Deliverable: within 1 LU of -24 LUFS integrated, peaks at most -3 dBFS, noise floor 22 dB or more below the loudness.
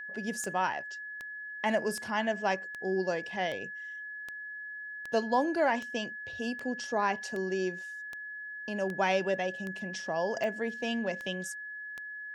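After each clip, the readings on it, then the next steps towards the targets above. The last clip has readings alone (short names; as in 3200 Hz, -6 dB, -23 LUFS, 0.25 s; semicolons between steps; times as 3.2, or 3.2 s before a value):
clicks 16; steady tone 1700 Hz; tone level -39 dBFS; loudness -33.0 LUFS; peak -15.0 dBFS; loudness target -24.0 LUFS
-> de-click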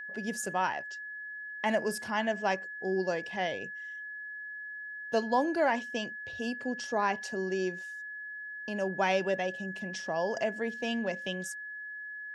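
clicks 0; steady tone 1700 Hz; tone level -39 dBFS
-> notch 1700 Hz, Q 30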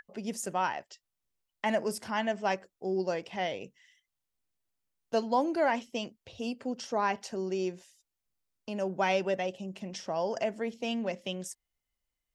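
steady tone none; loudness -33.0 LUFS; peak -15.5 dBFS; loudness target -24.0 LUFS
-> gain +9 dB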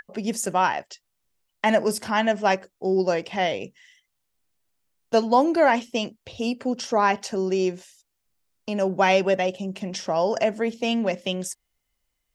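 loudness -24.0 LUFS; peak -6.5 dBFS; noise floor -77 dBFS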